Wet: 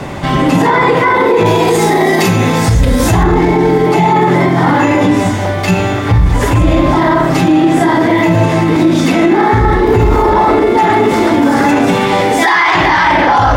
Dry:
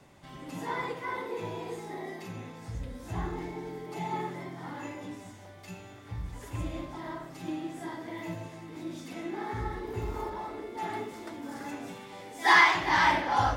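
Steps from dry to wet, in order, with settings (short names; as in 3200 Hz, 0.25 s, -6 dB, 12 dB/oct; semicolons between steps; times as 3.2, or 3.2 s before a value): high shelf 4400 Hz -10.5 dB, from 1.46 s +3 dB, from 3.23 s -9.5 dB; maximiser +36 dB; gain -1 dB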